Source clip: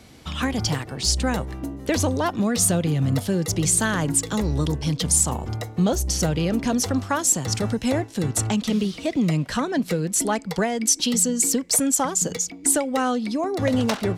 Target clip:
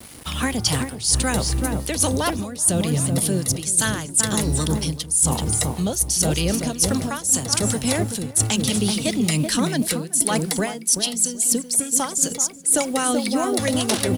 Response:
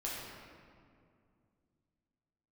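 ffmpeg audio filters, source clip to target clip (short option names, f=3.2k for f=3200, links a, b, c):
-filter_complex "[0:a]asplit=2[a][b];[b]adelay=381,lowpass=f=1k:p=1,volume=-4dB,asplit=2[c][d];[d]adelay=381,lowpass=f=1k:p=1,volume=0.44,asplit=2[e][f];[f]adelay=381,lowpass=f=1k:p=1,volume=0.44,asplit=2[g][h];[h]adelay=381,lowpass=f=1k:p=1,volume=0.44,asplit=2[i][j];[j]adelay=381,lowpass=f=1k:p=1,volume=0.44,asplit=2[k][l];[l]adelay=381,lowpass=f=1k:p=1,volume=0.44[m];[a][c][e][g][i][k][m]amix=inputs=7:normalize=0,acrossover=split=880[n][o];[n]aeval=exprs='val(0)*(1-0.5/2+0.5/2*cos(2*PI*5.1*n/s))':c=same[p];[o]aeval=exprs='val(0)*(1-0.5/2-0.5/2*cos(2*PI*5.1*n/s))':c=same[q];[p][q]amix=inputs=2:normalize=0,acrossover=split=300|2800[r][s][t];[t]dynaudnorm=f=240:g=5:m=11.5dB[u];[r][s][u]amix=inputs=3:normalize=0,acrusher=bits=7:mix=0:aa=0.000001,equalizer=f=9.8k:w=3:g=14.5,areverse,acompressor=threshold=-22dB:ratio=16,areverse,volume=5.5dB"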